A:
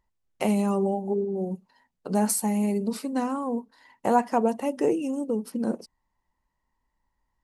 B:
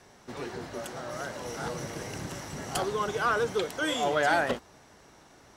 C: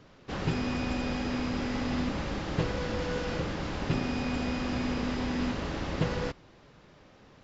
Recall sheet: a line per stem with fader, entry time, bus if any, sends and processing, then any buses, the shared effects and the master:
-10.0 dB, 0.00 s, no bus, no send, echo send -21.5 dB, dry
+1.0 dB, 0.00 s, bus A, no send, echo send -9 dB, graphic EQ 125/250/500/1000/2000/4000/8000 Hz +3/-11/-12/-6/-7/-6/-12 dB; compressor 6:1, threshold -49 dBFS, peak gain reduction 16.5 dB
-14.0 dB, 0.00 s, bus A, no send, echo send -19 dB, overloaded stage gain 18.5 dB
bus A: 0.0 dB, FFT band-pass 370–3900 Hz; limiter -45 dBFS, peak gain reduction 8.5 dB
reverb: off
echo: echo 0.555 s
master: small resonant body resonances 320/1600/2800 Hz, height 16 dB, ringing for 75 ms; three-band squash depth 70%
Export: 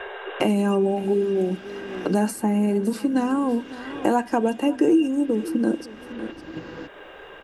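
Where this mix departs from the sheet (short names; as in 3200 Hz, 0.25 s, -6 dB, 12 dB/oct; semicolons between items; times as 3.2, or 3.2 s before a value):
stem A -10.0 dB -> +1.0 dB; stem B: missing graphic EQ 125/250/500/1000/2000/4000/8000 Hz +3/-11/-12/-6/-7/-6/-12 dB; stem C -14.0 dB -> -6.5 dB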